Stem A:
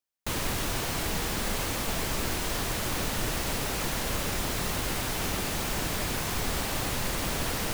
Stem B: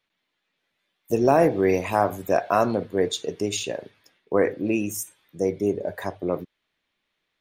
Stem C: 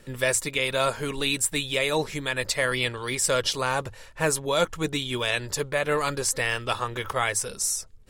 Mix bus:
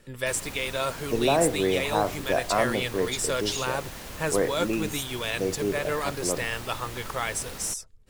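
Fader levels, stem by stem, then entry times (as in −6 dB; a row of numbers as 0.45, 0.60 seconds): −9.5, −4.5, −4.5 decibels; 0.00, 0.00, 0.00 seconds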